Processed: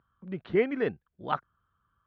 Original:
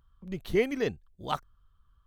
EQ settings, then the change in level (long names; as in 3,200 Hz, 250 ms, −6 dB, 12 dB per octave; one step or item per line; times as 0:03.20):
band-pass filter 140–3,100 Hz
high-frequency loss of the air 230 metres
parametric band 1,500 Hz +6 dB 0.49 octaves
+1.5 dB